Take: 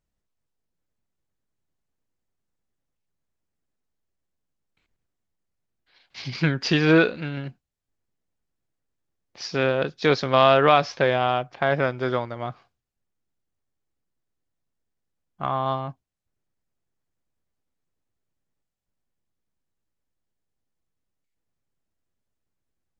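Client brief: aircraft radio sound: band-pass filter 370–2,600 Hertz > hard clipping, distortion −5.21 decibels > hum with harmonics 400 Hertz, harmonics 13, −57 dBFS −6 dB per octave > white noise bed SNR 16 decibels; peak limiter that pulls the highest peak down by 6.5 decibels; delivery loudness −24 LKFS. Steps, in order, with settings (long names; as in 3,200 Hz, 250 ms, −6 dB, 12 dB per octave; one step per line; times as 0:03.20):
brickwall limiter −10.5 dBFS
band-pass filter 370–2,600 Hz
hard clipping −27 dBFS
hum with harmonics 400 Hz, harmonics 13, −57 dBFS −6 dB per octave
white noise bed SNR 16 dB
level +8.5 dB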